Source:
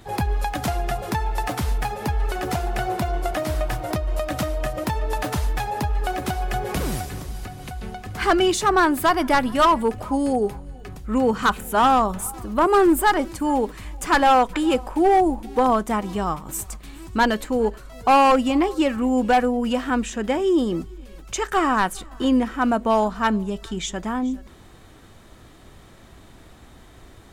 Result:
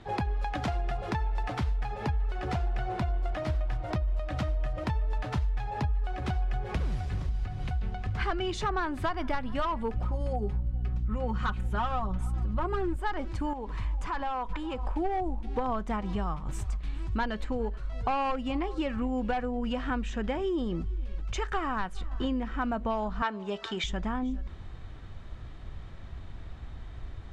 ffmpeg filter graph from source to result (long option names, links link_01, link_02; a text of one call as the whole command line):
ffmpeg -i in.wav -filter_complex "[0:a]asettb=1/sr,asplit=3[link_01][link_02][link_03];[link_01]atrim=end=9.964[link_04];[link_02]atrim=start=9.96:end=12.97,asetpts=PTS-STARTPTS,afade=type=in:duration=0.004:curve=qsin,afade=type=out:start_time=3.006:duration=0.004:curve=qsin,aecho=1:1:5.5:0.72,atrim=end_sample=132741,aeval=exprs='val(0)+0.0398*(sin(2*PI*60*n/s)+sin(2*PI*2*60*n/s)/2+sin(2*PI*3*60*n/s)/3+sin(2*PI*4*60*n/s)/4+sin(2*PI*5*60*n/s)/5)':channel_layout=same[link_05];[link_03]atrim=start=12.966[link_06];[link_04][link_05]acrossfade=duration=0.004:curve1=hsin:curve2=qsin[link_07];[link_07][link_06]acrossfade=duration=0.004:curve1=qsin:curve2=hsin,asettb=1/sr,asplit=3[link_08][link_09][link_10];[link_08]atrim=end=13.534[link_11];[link_09]atrim=start=13.53:end=14.85,asetpts=PTS-STARTPTS,afade=type=in:duration=0.004:curve=qsin,afade=type=out:start_time=1.316:duration=0.004:curve=qsin,equalizer=frequency=990:width_type=o:width=0.34:gain=9.5,acompressor=threshold=-30dB:ratio=3:attack=3.2:release=140:knee=1:detection=peak[link_12];[link_10]atrim=start=14.846[link_13];[link_11][link_12]acrossfade=duration=0.004:curve1=hsin:curve2=qsin[link_14];[link_14][link_13]acrossfade=duration=0.004:curve1=qsin:curve2=hsin,asettb=1/sr,asplit=3[link_15][link_16][link_17];[link_15]atrim=end=23.224[link_18];[link_16]atrim=start=23.22:end=23.84,asetpts=PTS-STARTPTS,afade=type=in:duration=0.004:curve=qsin,afade=type=out:start_time=0.616:duration=0.004:curve=qsin,acontrast=77,highpass=420,lowpass=7900[link_19];[link_17]atrim=start=23.836[link_20];[link_18][link_19]acrossfade=duration=0.004:curve1=hsin:curve2=qsin[link_21];[link_21][link_20]acrossfade=duration=0.004:curve1=qsin:curve2=hsin,lowpass=3900,asubboost=boost=4:cutoff=130,acompressor=threshold=-24dB:ratio=6,volume=-3dB" out.wav